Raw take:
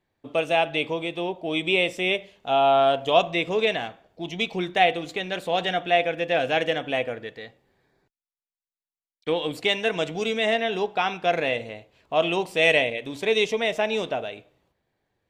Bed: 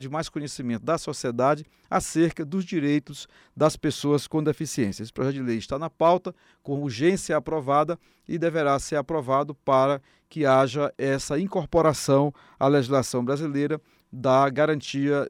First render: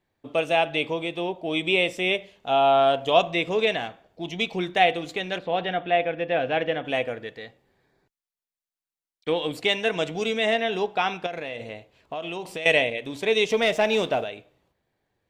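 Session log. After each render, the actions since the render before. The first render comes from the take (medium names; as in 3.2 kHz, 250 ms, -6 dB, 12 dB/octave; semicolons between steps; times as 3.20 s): 5.38–6.85 s: distance through air 270 m; 11.26–12.66 s: compression 10:1, threshold -28 dBFS; 13.50–14.24 s: waveshaping leveller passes 1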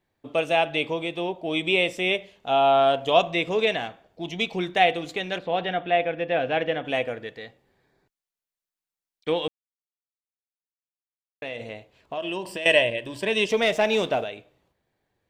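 9.48–11.42 s: mute; 12.17–13.49 s: rippled EQ curve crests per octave 1.3, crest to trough 10 dB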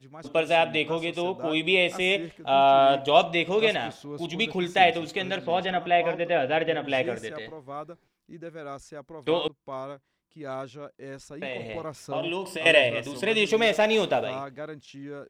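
add bed -16 dB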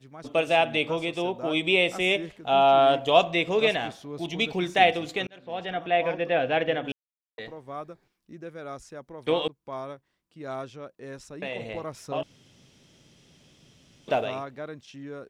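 5.27–6.36 s: fade in equal-power; 6.92–7.38 s: mute; 12.23–14.08 s: room tone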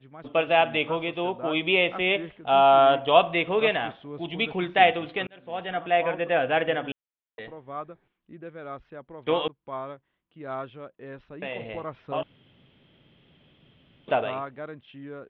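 elliptic low-pass 3.3 kHz, stop band 60 dB; dynamic bell 1.2 kHz, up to +5 dB, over -39 dBFS, Q 1.2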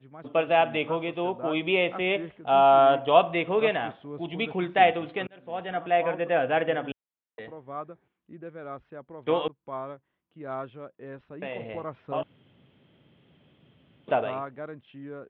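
high-pass 72 Hz; treble shelf 2.9 kHz -10 dB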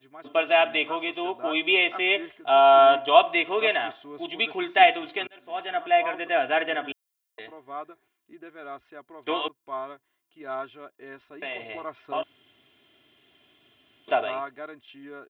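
tilt EQ +3.5 dB/octave; comb 2.9 ms, depth 74%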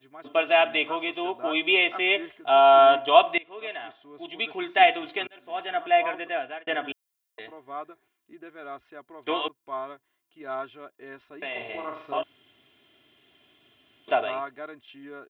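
3.38–5.06 s: fade in, from -22 dB; 6.07–6.67 s: fade out; 11.51–12.19 s: flutter echo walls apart 7.2 m, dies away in 0.53 s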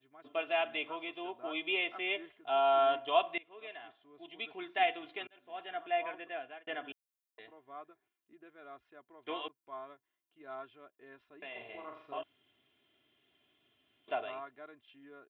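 trim -12 dB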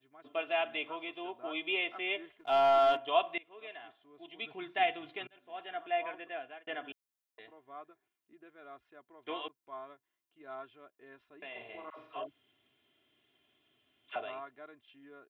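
2.37–2.97 s: waveshaping leveller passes 1; 4.42–5.38 s: peaking EQ 140 Hz +11.5 dB; 11.90–14.16 s: phase dispersion lows, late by 85 ms, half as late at 580 Hz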